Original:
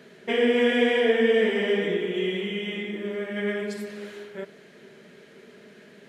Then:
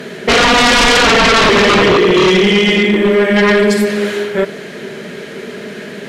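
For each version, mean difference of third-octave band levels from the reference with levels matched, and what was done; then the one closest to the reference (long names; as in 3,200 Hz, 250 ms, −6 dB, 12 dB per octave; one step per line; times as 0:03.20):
8.5 dB: sine wavefolder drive 15 dB, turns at −9.5 dBFS
level +3.5 dB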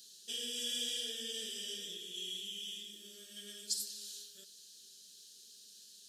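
15.5 dB: inverse Chebyshev high-pass filter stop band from 2,300 Hz, stop band 40 dB
level +12 dB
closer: first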